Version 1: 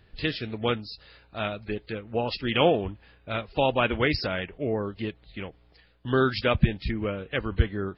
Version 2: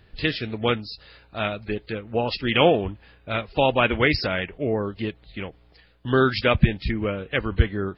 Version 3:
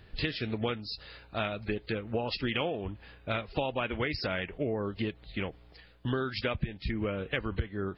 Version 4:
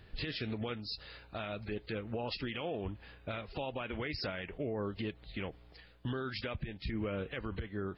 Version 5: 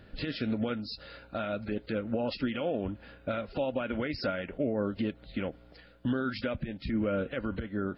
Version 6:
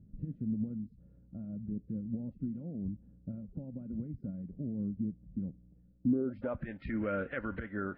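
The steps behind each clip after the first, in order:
dynamic equaliser 2,100 Hz, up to +3 dB, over −40 dBFS, Q 2.5; level +3.5 dB
downward compressor 10 to 1, threshold −28 dBFS, peak gain reduction 18.5 dB
brickwall limiter −26.5 dBFS, peak gain reduction 9.5 dB; level −2 dB
hollow resonant body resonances 250/550/1,400 Hz, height 11 dB, ringing for 25 ms
low-pass filter sweep 180 Hz → 1,800 Hz, 0:05.96–0:06.69; level −5 dB

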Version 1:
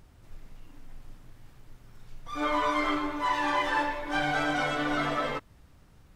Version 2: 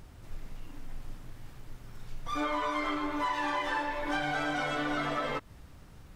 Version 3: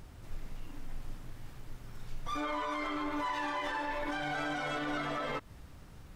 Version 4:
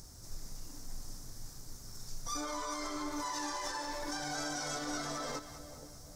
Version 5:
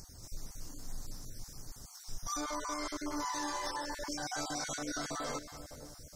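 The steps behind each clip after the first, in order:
downward compressor 6 to 1, threshold −34 dBFS, peak gain reduction 11 dB; level +5 dB
brickwall limiter −27 dBFS, peak gain reduction 6.5 dB
high shelf with overshoot 4,000 Hz +12.5 dB, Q 3; echo with a time of its own for lows and highs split 730 Hz, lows 479 ms, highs 197 ms, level −12 dB; level −3.5 dB
time-frequency cells dropped at random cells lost 25%; level +1.5 dB

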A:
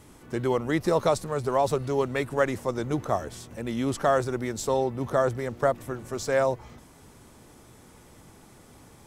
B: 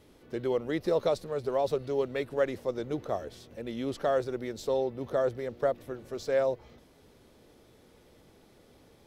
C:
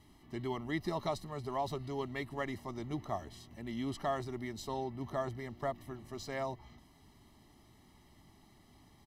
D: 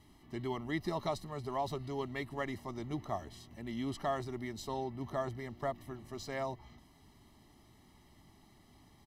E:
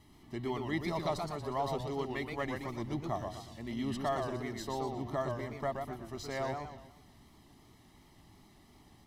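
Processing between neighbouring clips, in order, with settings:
octave-band graphic EQ 125/500/1,000/4,000/8,000 Hz −3/+7/−5/+6/−9 dB; level −7.5 dB
comb filter 1 ms, depth 99%; level −5.5 dB
no processing that can be heard
feedback echo with a swinging delay time 121 ms, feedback 40%, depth 175 cents, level −5 dB; level +1 dB

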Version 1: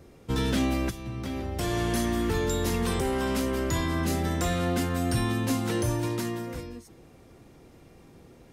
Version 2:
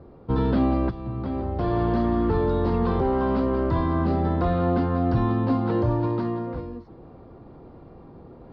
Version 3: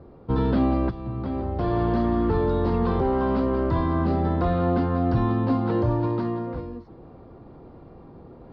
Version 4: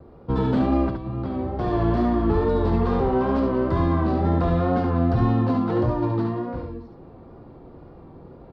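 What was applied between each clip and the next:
Chebyshev low-pass filter 4,600 Hz, order 5; high shelf with overshoot 1,600 Hz −12.5 dB, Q 1.5; reversed playback; upward compression, threshold −44 dBFS; reversed playback; level +4.5 dB
no processing that can be heard
stylus tracing distortion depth 0.029 ms; tape wow and flutter 50 cents; single-tap delay 71 ms −5 dB

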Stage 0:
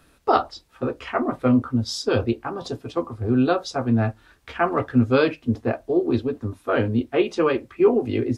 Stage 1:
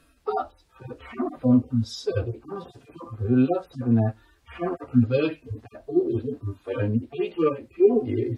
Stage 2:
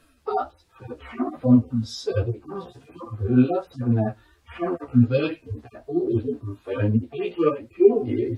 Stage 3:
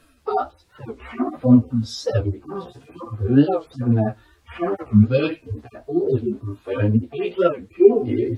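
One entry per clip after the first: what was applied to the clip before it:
harmonic-percussive split with one part muted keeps harmonic
flanger 1.3 Hz, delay 8.2 ms, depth 9.3 ms, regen +4%; level +4.5 dB
wow of a warped record 45 rpm, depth 250 cents; level +3 dB

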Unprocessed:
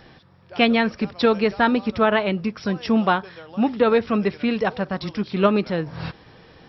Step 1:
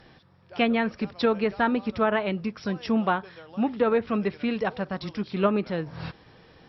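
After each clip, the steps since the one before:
treble cut that deepens with the level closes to 2,400 Hz, closed at −13.5 dBFS
level −5 dB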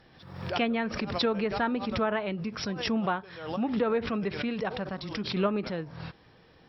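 background raised ahead of every attack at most 66 dB per second
level −5 dB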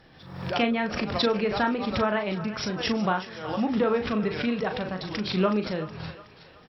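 double-tracking delay 38 ms −7 dB
feedback echo with a high-pass in the loop 370 ms, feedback 52%, high-pass 640 Hz, level −13 dB
level +2.5 dB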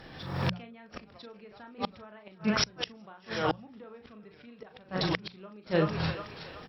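gate with flip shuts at −20 dBFS, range −31 dB
mains-hum notches 60/120/180 Hz
level +6.5 dB

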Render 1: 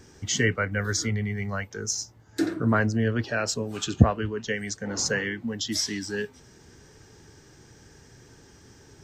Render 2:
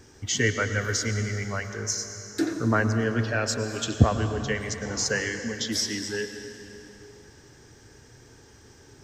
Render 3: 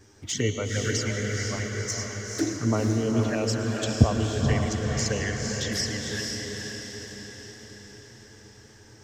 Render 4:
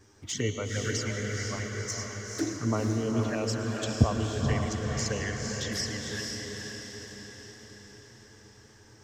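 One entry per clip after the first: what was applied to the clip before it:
parametric band 180 Hz −9 dB 0.34 octaves; on a send at −7.5 dB: convolution reverb RT60 3.3 s, pre-delay 92 ms
flanger swept by the level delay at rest 11.3 ms, full sweep at −22 dBFS; feedback delay with all-pass diffusion 485 ms, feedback 55%, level −3 dB
parametric band 1,100 Hz +4 dB 0.48 octaves; level −4 dB

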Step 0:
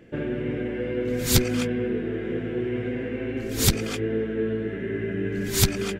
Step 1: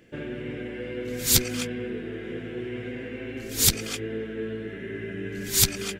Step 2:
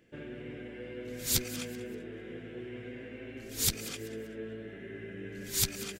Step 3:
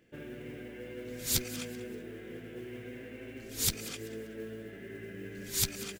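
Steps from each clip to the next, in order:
high-shelf EQ 2,300 Hz +11.5 dB; level −6.5 dB
echo with shifted repeats 193 ms, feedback 31%, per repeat +120 Hz, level −16 dB; level −9 dB
noise that follows the level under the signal 24 dB; level −1 dB

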